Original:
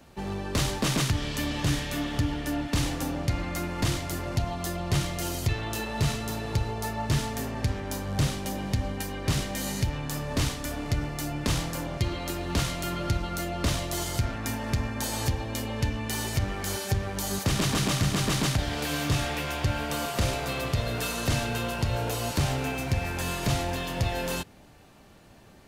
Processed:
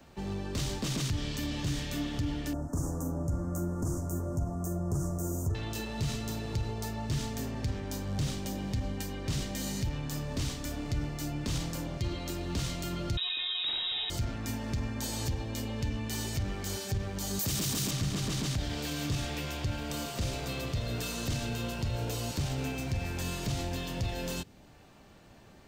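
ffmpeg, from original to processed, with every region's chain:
ffmpeg -i in.wav -filter_complex "[0:a]asettb=1/sr,asplit=3[link_01][link_02][link_03];[link_01]atrim=end=2.534[link_04];[link_02]atrim=start=2.53:end=5.55,asetpts=PTS-STARTPTS,afade=type=in:duration=0.004:curve=qsin,afade=type=out:start_time=3.016:duration=0.004:curve=qsin,asuperstop=centerf=3000:order=8:qfactor=0.57,asplit=2[link_05][link_06];[link_06]adelay=12,volume=-4.5dB[link_07];[link_05][link_07]amix=inputs=2:normalize=0,atrim=end_sample=133182[link_08];[link_03]atrim=start=5.546[link_09];[link_04][link_08]acrossfade=duration=0.004:curve1=hsin:curve2=qsin[link_10];[link_10][link_09]acrossfade=duration=0.004:curve1=qsin:curve2=hsin,asettb=1/sr,asplit=3[link_11][link_12][link_13];[link_11]atrim=end=13.174[link_14];[link_12]atrim=start=13.17:end=14.1,asetpts=PTS-STARTPTS,afade=type=in:duration=0.004:curve=qsin,afade=type=out:start_time=0.926:duration=0.004:curve=qsin,lowpass=frequency=3300:width_type=q:width=0.5098,lowpass=frequency=3300:width_type=q:width=0.6013,lowpass=frequency=3300:width_type=q:width=0.9,lowpass=frequency=3300:width_type=q:width=2.563,afreqshift=-3900,acontrast=57[link_15];[link_13]atrim=start=14.096[link_16];[link_14][link_15]acrossfade=duration=0.004:curve1=hsin:curve2=qsin[link_17];[link_17][link_16]acrossfade=duration=0.004:curve1=qsin:curve2=hsin,asettb=1/sr,asplit=3[link_18][link_19][link_20];[link_18]atrim=end=17.394[link_21];[link_19]atrim=start=17.39:end=17.91,asetpts=PTS-STARTPTS,afade=type=in:duration=0.004:curve=qsin,afade=type=out:start_time=0.516:duration=0.004:curve=qsin,highpass=48,aemphasis=mode=production:type=50fm,aeval=exprs='0.355*sin(PI/2*1.58*val(0)/0.355)':channel_layout=same[link_22];[link_20]atrim=start=17.906[link_23];[link_21][link_22]acrossfade=duration=0.004:curve1=hsin:curve2=qsin[link_24];[link_24][link_23]acrossfade=duration=0.004:curve1=qsin:curve2=hsin,equalizer=frequency=11000:width=3.5:gain=-13.5,alimiter=limit=-21dB:level=0:latency=1:release=25,acrossover=split=440|3000[link_25][link_26][link_27];[link_26]acompressor=threshold=-55dB:ratio=1.5[link_28];[link_25][link_28][link_27]amix=inputs=3:normalize=0,volume=-2dB" out.wav

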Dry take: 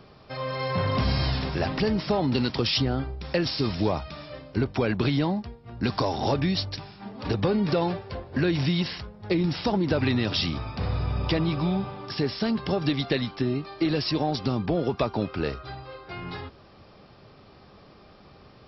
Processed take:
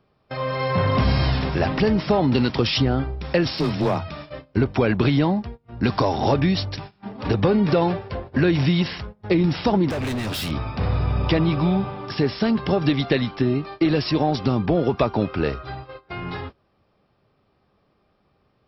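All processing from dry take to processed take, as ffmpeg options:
ffmpeg -i in.wav -filter_complex "[0:a]asettb=1/sr,asplit=3[link_01][link_02][link_03];[link_01]atrim=end=3.534[link_04];[link_02]atrim=start=3.53:end=4.09,asetpts=PTS-STARTPTS,afade=type=in:duration=0.004:curve=qsin,afade=type=out:start_time=0.556:duration=0.004:curve=qsin,afreqshift=24,asoftclip=type=hard:threshold=-21dB[link_05];[link_03]atrim=start=4.086[link_06];[link_04][link_05]acrossfade=duration=0.004:curve1=hsin:curve2=qsin[link_07];[link_07][link_06]acrossfade=duration=0.004:curve1=qsin:curve2=hsin,asettb=1/sr,asplit=3[link_08][link_09][link_10];[link_08]atrim=end=9.904[link_11];[link_09]atrim=start=9.9:end=10.51,asetpts=PTS-STARTPTS,afade=type=in:duration=0.004:curve=qsin,afade=type=out:start_time=0.606:duration=0.004:curve=qsin,highshelf=frequency=4000:gain=3.5,volume=29dB,asoftclip=hard,volume=-29dB[link_12];[link_10]atrim=start=10.506[link_13];[link_11][link_12]acrossfade=duration=0.004:curve1=hsin:curve2=qsin[link_14];[link_14][link_13]acrossfade=duration=0.004:curve1=qsin:curve2=hsin,agate=range=-19dB:threshold=-40dB:ratio=16:detection=peak,equalizer=frequency=4700:width=1.6:gain=-6,volume=5.5dB" out.wav

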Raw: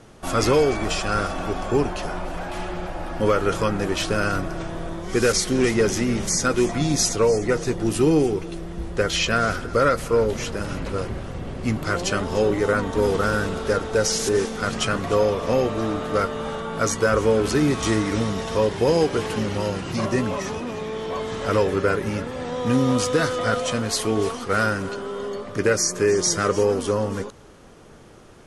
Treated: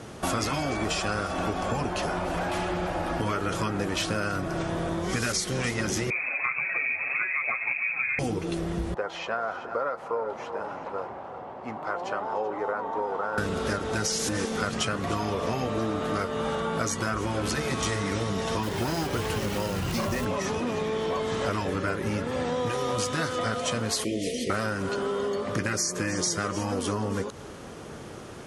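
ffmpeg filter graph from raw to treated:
ffmpeg -i in.wav -filter_complex "[0:a]asettb=1/sr,asplit=3[link_01][link_02][link_03];[link_01]atrim=end=6.104[link_04];[link_02]atrim=start=6.1:end=8.19,asetpts=PTS-STARTPTS,afade=type=in:duration=0.004:curve=qsin,afade=type=out:start_time=2.086:duration=0.004:curve=qsin,aecho=1:1:909:0.282,atrim=end_sample=92169,lowpass=frequency=2200:width_type=q:width=0.5098,lowpass=frequency=2200:width_type=q:width=0.6013,lowpass=frequency=2200:width_type=q:width=0.9,lowpass=frequency=2200:width_type=q:width=2.563,afreqshift=-2600,flanger=delay=5.2:depth=4:regen=36:speed=1.7:shape=sinusoidal[link_05];[link_03]atrim=start=8.186[link_06];[link_04][link_05]acrossfade=duration=0.004:curve1=hsin:curve2=qsin[link_07];[link_07][link_06]acrossfade=duration=0.004:curve1=qsin:curve2=hsin,asettb=1/sr,asplit=3[link_08][link_09][link_10];[link_08]atrim=end=8.944[link_11];[link_09]atrim=start=8.94:end=13.38,asetpts=PTS-STARTPTS,afade=type=in:duration=0.004:curve=qsin,afade=type=out:start_time=4.436:duration=0.004:curve=qsin,bandpass=frequency=850:width_type=q:width=3.4,aecho=1:1:382:0.2,atrim=end_sample=195804[link_12];[link_10]atrim=start=13.376[link_13];[link_11][link_12]acrossfade=duration=0.004:curve1=hsin:curve2=qsin[link_14];[link_14][link_13]acrossfade=duration=0.004:curve1=qsin:curve2=hsin,asettb=1/sr,asplit=3[link_15][link_16][link_17];[link_15]atrim=end=18.634[link_18];[link_16]atrim=start=18.63:end=20.25,asetpts=PTS-STARTPTS,afade=type=in:duration=0.004:curve=qsin,afade=type=out:start_time=1.616:duration=0.004:curve=qsin,asubboost=boost=11.5:cutoff=110,acrusher=bits=4:mode=log:mix=0:aa=0.000001,volume=15.5dB,asoftclip=hard,volume=-15.5dB[link_19];[link_17]atrim=start=20.246[link_20];[link_18][link_19]acrossfade=duration=0.004:curve1=hsin:curve2=qsin[link_21];[link_21][link_20]acrossfade=duration=0.004:curve1=qsin:curve2=hsin,asettb=1/sr,asplit=3[link_22][link_23][link_24];[link_22]atrim=end=24.044[link_25];[link_23]atrim=start=24.04:end=24.5,asetpts=PTS-STARTPTS,afade=type=in:duration=0.004:curve=qsin,afade=type=out:start_time=0.456:duration=0.004:curve=qsin,asuperstop=centerf=1100:order=20:qfactor=0.91,equalizer=frequency=93:width=2:gain=-11[link_26];[link_24]atrim=start=24.496[link_27];[link_25][link_26]acrossfade=duration=0.004:curve1=hsin:curve2=qsin[link_28];[link_28][link_27]acrossfade=duration=0.004:curve1=qsin:curve2=hsin,highpass=59,afftfilt=real='re*lt(hypot(re,im),0.562)':imag='im*lt(hypot(re,im),0.562)':win_size=1024:overlap=0.75,acompressor=threshold=-32dB:ratio=6,volume=6.5dB" out.wav

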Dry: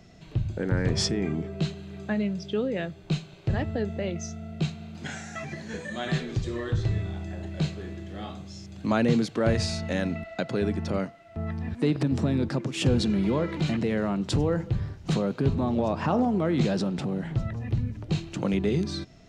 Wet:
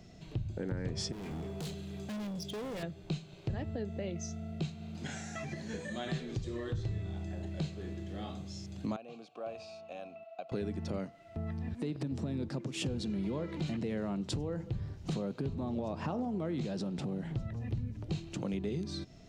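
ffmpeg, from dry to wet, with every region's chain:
ffmpeg -i in.wav -filter_complex "[0:a]asettb=1/sr,asplit=3[link_01][link_02][link_03];[link_01]atrim=end=1.124[link_04];[link_02]atrim=start=1.12:end=2.83,asetpts=PTS-STARTPTS,afade=type=in:duration=0.004:curve=qsin,afade=type=out:start_time=1.706:duration=0.004:curve=qsin,volume=34.5dB,asoftclip=hard,volume=-34.5dB,aeval=exprs='val(0)+0.000631*sin(2*PI*3400*n/s)':channel_layout=same,highshelf=frequency=6400:gain=10[link_05];[link_03]atrim=start=2.826[link_06];[link_04][link_05]acrossfade=duration=0.004:curve1=hsin:curve2=qsin[link_07];[link_07][link_06]acrossfade=duration=0.004:curve1=qsin:curve2=hsin,asettb=1/sr,asplit=3[link_08][link_09][link_10];[link_08]atrim=end=8.964[link_11];[link_09]atrim=start=8.96:end=10.52,asetpts=PTS-STARTPTS,afade=type=in:duration=0.004:curve=qsin,afade=type=out:start_time=1.556:duration=0.004:curve=qsin,acrossover=split=6500[link_12][link_13];[link_13]acompressor=threshold=-51dB:ratio=4:attack=1:release=60[link_14];[link_12][link_14]amix=inputs=2:normalize=0,asplit=3[link_15][link_16][link_17];[link_15]bandpass=frequency=730:width_type=q:width=8,volume=0dB[link_18];[link_16]bandpass=frequency=1090:width_type=q:width=8,volume=-6dB[link_19];[link_17]bandpass=frequency=2440:width_type=q:width=8,volume=-9dB[link_20];[link_18][link_19][link_20]amix=inputs=3:normalize=0,aemphasis=mode=production:type=50fm[link_21];[link_10]atrim=start=10.516[link_22];[link_11][link_21]acrossfade=duration=0.004:curve1=hsin:curve2=qsin[link_23];[link_23][link_22]acrossfade=duration=0.004:curve1=qsin:curve2=hsin,equalizer=frequency=1500:width_type=o:width=1.7:gain=-4.5,alimiter=limit=-18dB:level=0:latency=1:release=436,acompressor=threshold=-36dB:ratio=2,volume=-1.5dB" out.wav

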